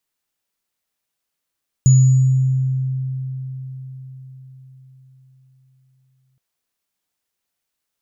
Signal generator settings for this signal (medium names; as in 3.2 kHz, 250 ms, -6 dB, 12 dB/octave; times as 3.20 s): sine partials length 4.52 s, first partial 131 Hz, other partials 6.89 kHz, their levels -13 dB, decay 4.98 s, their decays 1.03 s, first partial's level -6.5 dB